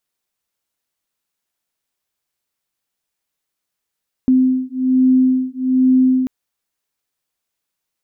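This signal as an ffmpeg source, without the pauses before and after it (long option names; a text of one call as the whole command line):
ffmpeg -f lavfi -i "aevalsrc='0.188*(sin(2*PI*257*t)+sin(2*PI*258.2*t))':duration=1.99:sample_rate=44100" out.wav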